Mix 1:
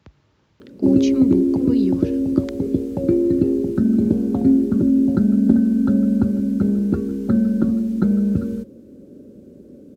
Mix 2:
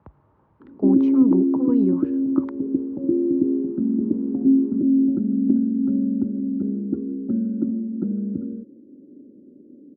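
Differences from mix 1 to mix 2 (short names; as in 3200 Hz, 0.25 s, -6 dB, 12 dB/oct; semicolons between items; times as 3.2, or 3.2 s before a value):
speech: add synth low-pass 1000 Hz, resonance Q 2.2; background: add band-pass 290 Hz, Q 3.3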